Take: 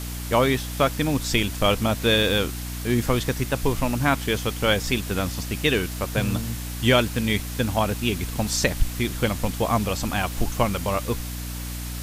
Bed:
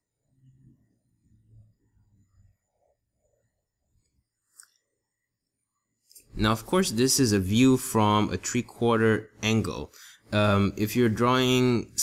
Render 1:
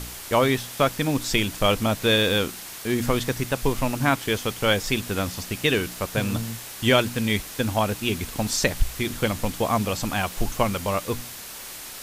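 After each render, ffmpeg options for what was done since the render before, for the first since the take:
-af "bandreject=f=60:t=h:w=4,bandreject=f=120:t=h:w=4,bandreject=f=180:t=h:w=4,bandreject=f=240:t=h:w=4,bandreject=f=300:t=h:w=4"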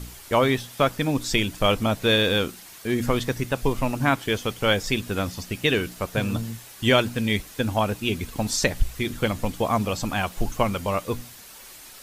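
-af "afftdn=nr=8:nf=-38"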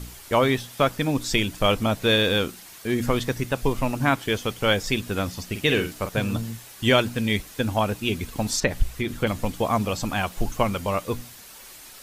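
-filter_complex "[0:a]asettb=1/sr,asplit=3[s0][s1][s2];[s0]atrim=end=5.504[s3];[s1]atrim=start=5.5:end=6.09,asetpts=PTS-STARTPTS,afade=t=in:d=0.004:c=qsin,afade=t=out:st=0.586:d=0.004:c=qsin,asplit=2[s4][s5];[s5]adelay=47,volume=0.398[s6];[s4][s6]amix=inputs=2:normalize=0,atrim=end_sample=26019[s7];[s2]atrim=start=6.086[s8];[s3][s7]acrossfade=d=0.004:c1=hsin:c2=qsin[s9];[s9][s8]acrossfade=d=0.004:c1=qsin:c2=hsin,asettb=1/sr,asplit=3[s10][s11][s12];[s10]atrim=end=8.604[s13];[s11]atrim=start=8.6:end=9.27,asetpts=PTS-STARTPTS,afade=t=in:d=0.004:c=qsin,afade=t=out:st=0.666:d=0.004:c=qsin,acrossover=split=3100[s14][s15];[s15]acompressor=threshold=0.00891:ratio=4:attack=1:release=60[s16];[s14][s16]amix=inputs=2:normalize=0[s17];[s12]atrim=start=9.266[s18];[s13][s17]acrossfade=d=0.004:c1=hsin:c2=qsin[s19];[s19][s18]acrossfade=d=0.004:c1=qsin:c2=hsin"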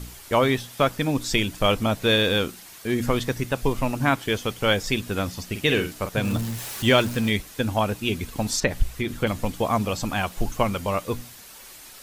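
-filter_complex "[0:a]asettb=1/sr,asplit=3[s0][s1][s2];[s0]atrim=end=6.244[s3];[s1]atrim=start=6.24:end=7.3,asetpts=PTS-STARTPTS,afade=t=in:d=0.004:c=qsin,afade=t=out:st=1.056:d=0.004:c=qsin,aeval=exprs='val(0)+0.5*0.0282*sgn(val(0))':c=same[s4];[s2]atrim=start=7.296[s5];[s3][s4]acrossfade=d=0.004:c1=hsin:c2=qsin[s6];[s6][s5]acrossfade=d=0.004:c1=qsin:c2=hsin"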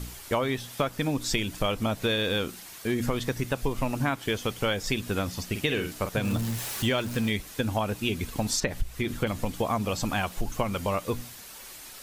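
-af "acompressor=threshold=0.0708:ratio=6"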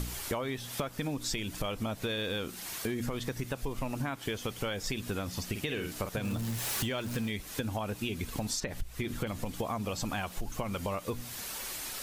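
-filter_complex "[0:a]asplit=2[s0][s1];[s1]alimiter=limit=0.119:level=0:latency=1,volume=0.891[s2];[s0][s2]amix=inputs=2:normalize=0,acompressor=threshold=0.0224:ratio=4"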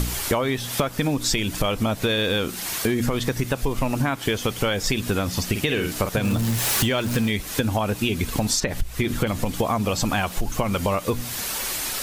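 -af "volume=3.76"

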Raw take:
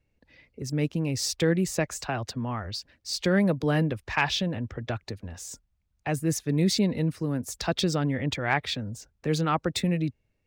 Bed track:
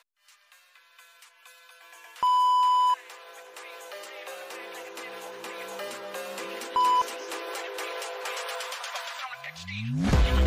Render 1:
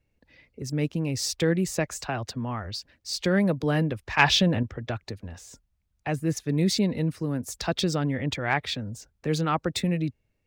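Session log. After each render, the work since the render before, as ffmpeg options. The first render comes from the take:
-filter_complex "[0:a]asettb=1/sr,asplit=3[s0][s1][s2];[s0]atrim=end=4.194[s3];[s1]atrim=start=4.19:end=4.63,asetpts=PTS-STARTPTS,afade=t=in:d=0.004:c=qsin,afade=t=out:st=0.436:d=0.004:c=qsin,acontrast=72[s4];[s2]atrim=start=4.626[s5];[s3][s4]acrossfade=d=0.004:c1=hsin:c2=qsin[s6];[s6][s5]acrossfade=d=0.004:c1=qsin:c2=hsin,asettb=1/sr,asplit=3[s7][s8][s9];[s7]atrim=end=5.284[s10];[s8]atrim=start=5.28:end=6.37,asetpts=PTS-STARTPTS,afade=t=in:d=0.004:c=qsin,afade=t=out:st=1.086:d=0.004:c=qsin,acrossover=split=3800[s11][s12];[s12]acompressor=threshold=0.00501:ratio=4:attack=1:release=60[s13];[s11][s13]amix=inputs=2:normalize=0[s14];[s9]atrim=start=6.366[s15];[s10][s14]acrossfade=d=0.004:c1=hsin:c2=qsin[s16];[s16][s15]acrossfade=d=0.004:c1=qsin:c2=hsin"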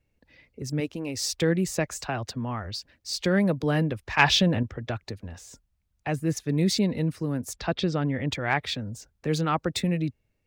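-filter_complex "[0:a]asettb=1/sr,asplit=3[s0][s1][s2];[s0]atrim=end=0.804[s3];[s1]atrim=start=0.8:end=1.35,asetpts=PTS-STARTPTS,afade=t=in:d=0.004:c=qsin,afade=t=out:st=0.546:d=0.004:c=qsin,equalizer=f=150:t=o:w=0.77:g=-12.5[s4];[s2]atrim=start=1.346[s5];[s3][s4]acrossfade=d=0.004:c1=hsin:c2=qsin[s6];[s6][s5]acrossfade=d=0.004:c1=qsin:c2=hsin,asettb=1/sr,asplit=3[s7][s8][s9];[s7]atrim=end=7.534[s10];[s8]atrim=start=7.53:end=8.21,asetpts=PTS-STARTPTS,afade=t=in:d=0.004:c=qsin,afade=t=out:st=0.676:d=0.004:c=qsin,lowpass=3500[s11];[s9]atrim=start=8.206[s12];[s10][s11]acrossfade=d=0.004:c1=hsin:c2=qsin[s13];[s13][s12]acrossfade=d=0.004:c1=qsin:c2=hsin"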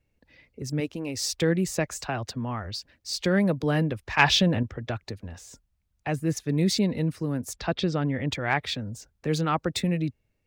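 -af anull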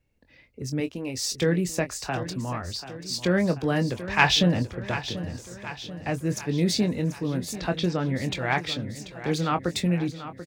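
-filter_complex "[0:a]asplit=2[s0][s1];[s1]adelay=23,volume=0.335[s2];[s0][s2]amix=inputs=2:normalize=0,aecho=1:1:737|1474|2211|2948|3685|4422:0.224|0.128|0.0727|0.0415|0.0236|0.0135"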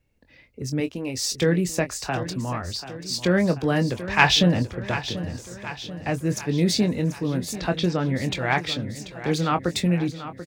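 -af "volume=1.33"

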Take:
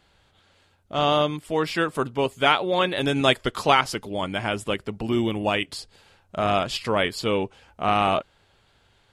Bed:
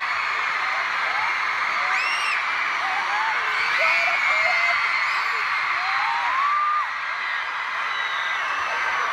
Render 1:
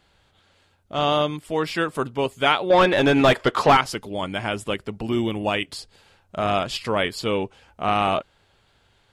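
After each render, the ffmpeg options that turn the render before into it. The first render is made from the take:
-filter_complex "[0:a]asettb=1/sr,asplit=3[s0][s1][s2];[s0]atrim=end=2.704[s3];[s1]atrim=start=2.7:end=3.77,asetpts=PTS-STARTPTS,afade=t=in:d=0.004:c=qsin,afade=t=out:st=1.066:d=0.004:c=qsin,asplit=2[s4][s5];[s5]highpass=f=720:p=1,volume=12.6,asoftclip=type=tanh:threshold=0.631[s6];[s4][s6]amix=inputs=2:normalize=0,lowpass=f=1100:p=1,volume=0.501[s7];[s2]atrim=start=3.766[s8];[s3][s7]acrossfade=d=0.004:c1=hsin:c2=qsin[s9];[s9][s8]acrossfade=d=0.004:c1=qsin:c2=hsin"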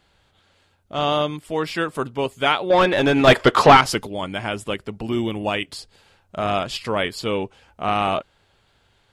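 -filter_complex "[0:a]asettb=1/sr,asplit=3[s0][s1][s2];[s0]atrim=end=3.274[s3];[s1]atrim=start=3.27:end=4.07,asetpts=PTS-STARTPTS,afade=t=in:d=0.004:c=qsin,afade=t=out:st=0.796:d=0.004:c=qsin,acontrast=69[s4];[s2]atrim=start=4.066[s5];[s3][s4]acrossfade=d=0.004:c1=hsin:c2=qsin[s6];[s6][s5]acrossfade=d=0.004:c1=qsin:c2=hsin"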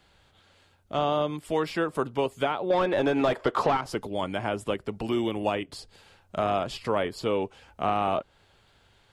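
-filter_complex "[0:a]alimiter=limit=0.376:level=0:latency=1:release=496,acrossover=split=300|1200[s0][s1][s2];[s0]acompressor=threshold=0.0178:ratio=4[s3];[s1]acompressor=threshold=0.0708:ratio=4[s4];[s2]acompressor=threshold=0.0126:ratio=4[s5];[s3][s4][s5]amix=inputs=3:normalize=0"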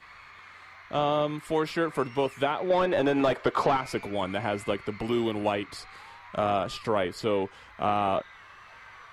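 -filter_complex "[1:a]volume=0.0531[s0];[0:a][s0]amix=inputs=2:normalize=0"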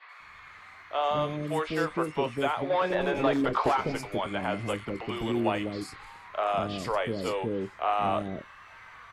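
-filter_complex "[0:a]asplit=2[s0][s1];[s1]adelay=26,volume=0.224[s2];[s0][s2]amix=inputs=2:normalize=0,acrossover=split=450|4400[s3][s4][s5];[s5]adelay=90[s6];[s3]adelay=200[s7];[s7][s4][s6]amix=inputs=3:normalize=0"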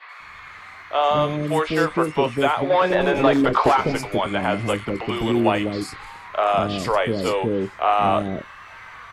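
-af "volume=2.66"

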